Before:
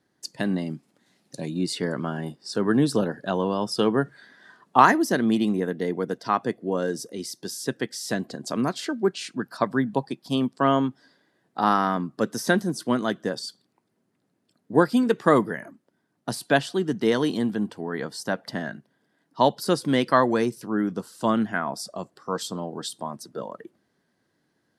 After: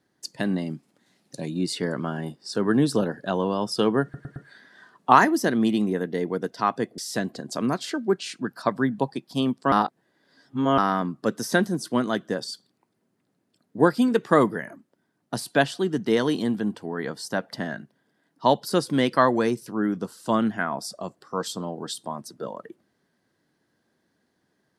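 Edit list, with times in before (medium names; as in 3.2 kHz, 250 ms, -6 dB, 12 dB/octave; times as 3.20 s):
4.03 s: stutter 0.11 s, 4 plays
6.65–7.93 s: delete
10.67–11.73 s: reverse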